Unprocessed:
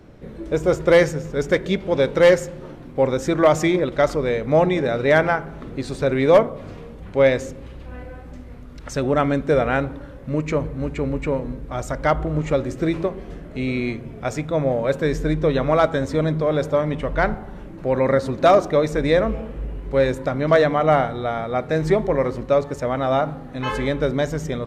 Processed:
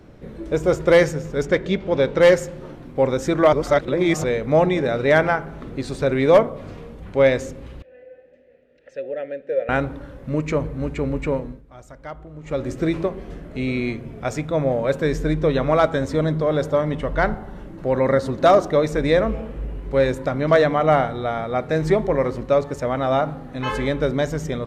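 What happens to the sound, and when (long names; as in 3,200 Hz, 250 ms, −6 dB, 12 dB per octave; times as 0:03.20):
0:01.45–0:02.21: high-frequency loss of the air 62 metres
0:03.53–0:04.24: reverse
0:07.82–0:09.69: formant filter e
0:11.35–0:12.69: duck −16 dB, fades 0.28 s
0:16.15–0:18.79: notch filter 2,400 Hz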